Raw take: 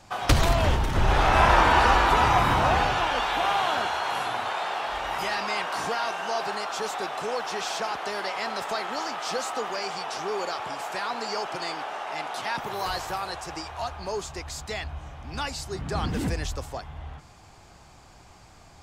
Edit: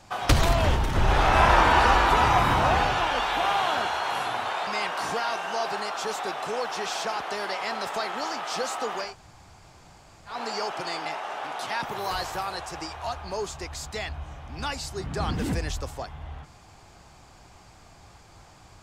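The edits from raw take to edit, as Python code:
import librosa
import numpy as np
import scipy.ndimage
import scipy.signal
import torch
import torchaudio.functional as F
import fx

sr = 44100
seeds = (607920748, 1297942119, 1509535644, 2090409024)

y = fx.edit(x, sr, fx.cut(start_s=4.67, length_s=0.75),
    fx.room_tone_fill(start_s=9.83, length_s=1.25, crossfade_s=0.16),
    fx.reverse_span(start_s=11.8, length_s=0.42), tone=tone)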